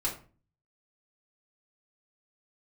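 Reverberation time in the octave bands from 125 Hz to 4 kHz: 0.65 s, 0.55 s, 0.40 s, 0.35 s, 0.35 s, 0.25 s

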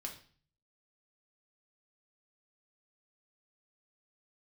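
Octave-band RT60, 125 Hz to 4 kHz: 0.80 s, 0.55 s, 0.45 s, 0.45 s, 0.45 s, 0.45 s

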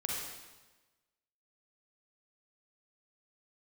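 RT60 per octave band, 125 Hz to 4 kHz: 1.2 s, 1.2 s, 1.2 s, 1.2 s, 1.1 s, 1.1 s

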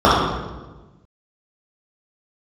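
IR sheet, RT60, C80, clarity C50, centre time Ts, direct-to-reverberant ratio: 1.2 s, 2.0 dB, -1.5 dB, 85 ms, -9.0 dB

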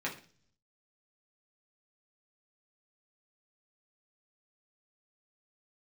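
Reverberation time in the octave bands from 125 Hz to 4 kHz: 0.95 s, 0.70 s, 0.50 s, 0.40 s, 0.40 s, 0.55 s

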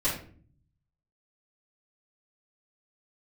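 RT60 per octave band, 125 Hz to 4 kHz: 1.2 s, 0.80 s, 0.55 s, 0.40 s, 0.40 s, 0.30 s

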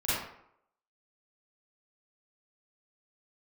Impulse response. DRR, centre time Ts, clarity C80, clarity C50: -12.5 dB, 81 ms, 1.5 dB, -4.0 dB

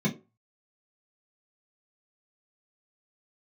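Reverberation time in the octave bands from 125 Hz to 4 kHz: 0.25 s, 0.25 s, 0.35 s, 0.25 s, 0.20 s, 0.15 s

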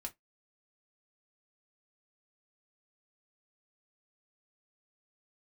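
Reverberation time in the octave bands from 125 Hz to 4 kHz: 0.15 s, 0.15 s, 0.15 s, 0.15 s, 0.15 s, 0.10 s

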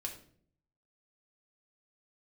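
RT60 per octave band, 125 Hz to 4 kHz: 0.95 s, 0.75 s, 0.65 s, 0.45 s, 0.45 s, 0.40 s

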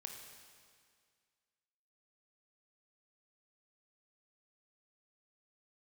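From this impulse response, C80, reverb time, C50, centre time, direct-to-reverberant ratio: 5.0 dB, 2.0 s, 4.0 dB, 59 ms, 2.0 dB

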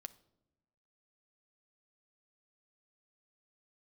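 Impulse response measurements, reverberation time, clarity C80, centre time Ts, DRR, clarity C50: no single decay rate, 21.5 dB, 3 ms, 11.5 dB, 18.0 dB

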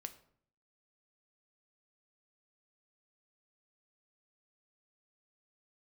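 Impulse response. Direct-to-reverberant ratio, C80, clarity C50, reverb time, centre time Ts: 8.5 dB, 17.5 dB, 14.5 dB, 0.60 s, 7 ms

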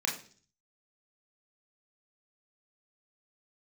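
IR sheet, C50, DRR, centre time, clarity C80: 10.0 dB, -1.5 dB, 25 ms, 14.0 dB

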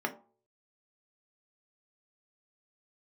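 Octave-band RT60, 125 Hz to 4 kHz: 0.50 s, 0.40 s, 0.45 s, 0.45 s, 0.25 s, 0.20 s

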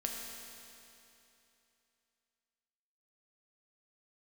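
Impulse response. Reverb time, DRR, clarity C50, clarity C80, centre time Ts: 2.9 s, -0.5 dB, 1.0 dB, 2.0 dB, 115 ms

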